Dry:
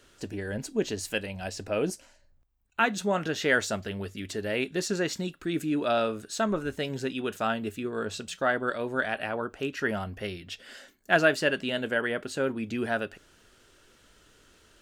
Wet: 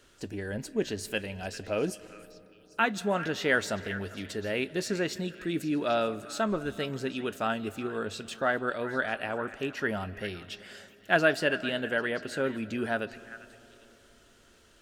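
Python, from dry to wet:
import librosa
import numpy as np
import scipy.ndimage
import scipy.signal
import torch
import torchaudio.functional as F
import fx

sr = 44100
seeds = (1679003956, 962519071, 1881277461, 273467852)

p1 = fx.dynamic_eq(x, sr, hz=6700.0, q=2.2, threshold_db=-50.0, ratio=4.0, max_db=-4)
p2 = p1 + fx.echo_stepped(p1, sr, ms=398, hz=1700.0, octaves=1.4, feedback_pct=70, wet_db=-11.5, dry=0)
p3 = fx.rev_freeverb(p2, sr, rt60_s=3.7, hf_ratio=0.4, predelay_ms=115, drr_db=18.5)
y = F.gain(torch.from_numpy(p3), -1.5).numpy()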